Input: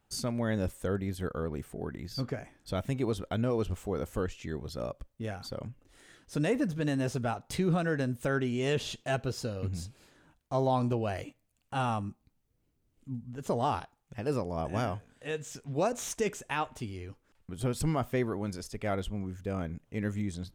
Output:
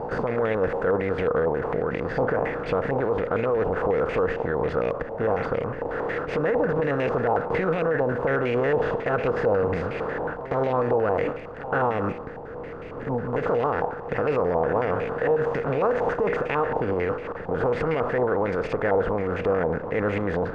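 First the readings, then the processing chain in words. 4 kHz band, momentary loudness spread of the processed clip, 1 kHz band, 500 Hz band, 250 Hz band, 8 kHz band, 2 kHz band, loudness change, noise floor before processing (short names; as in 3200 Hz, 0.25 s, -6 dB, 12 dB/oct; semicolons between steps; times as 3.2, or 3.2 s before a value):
n/a, 5 LU, +9.5 dB, +12.5 dB, +3.5 dB, under -15 dB, +11.0 dB, +8.5 dB, -74 dBFS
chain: per-bin compression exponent 0.4; bell 480 Hz +14.5 dB 0.33 oct; limiter -17 dBFS, peak gain reduction 11 dB; pre-echo 0.128 s -14.5 dB; stepped low-pass 11 Hz 890–2300 Hz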